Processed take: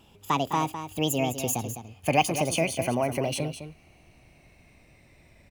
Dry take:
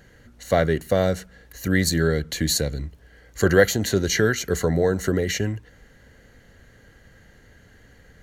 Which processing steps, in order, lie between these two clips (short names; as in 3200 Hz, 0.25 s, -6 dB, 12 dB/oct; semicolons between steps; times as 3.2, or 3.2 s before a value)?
speed glide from 174% -> 125%; on a send: echo 0.207 s -10 dB; on the sum: gain -5.5 dB